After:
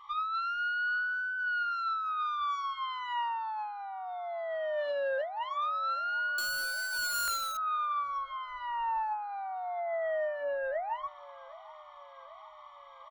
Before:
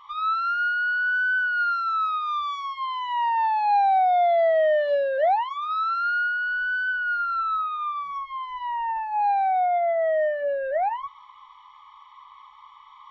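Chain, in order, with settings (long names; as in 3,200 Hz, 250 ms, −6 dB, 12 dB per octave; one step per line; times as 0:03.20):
0:06.38–0:07.57: each half-wave held at its own peak
comb filter 2.5 ms, depth 43%
compressor whose output falls as the input rises −26 dBFS, ratio −1
delay with a band-pass on its return 774 ms, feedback 63%, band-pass 850 Hz, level −19 dB
buffer that repeats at 0:07.14, samples 1,024, times 5
level −7.5 dB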